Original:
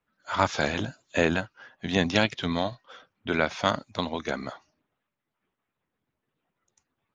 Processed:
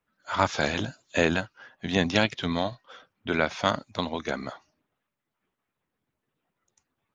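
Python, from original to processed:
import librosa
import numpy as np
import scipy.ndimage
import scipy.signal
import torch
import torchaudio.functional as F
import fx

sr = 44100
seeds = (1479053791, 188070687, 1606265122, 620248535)

y = fx.peak_eq(x, sr, hz=5000.0, db=3.5, octaves=1.4, at=(0.63, 1.58))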